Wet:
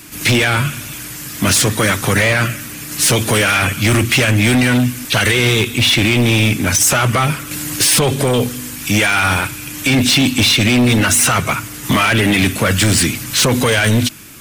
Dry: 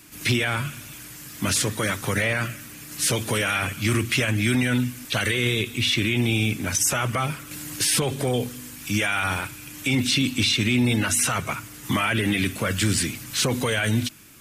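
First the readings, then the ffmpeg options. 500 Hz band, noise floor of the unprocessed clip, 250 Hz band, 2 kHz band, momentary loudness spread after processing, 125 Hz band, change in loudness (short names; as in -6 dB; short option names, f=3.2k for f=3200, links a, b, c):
+10.0 dB, -41 dBFS, +9.0 dB, +10.0 dB, 9 LU, +9.5 dB, +9.5 dB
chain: -af "acontrast=42,volume=15dB,asoftclip=hard,volume=-15dB,volume=6dB"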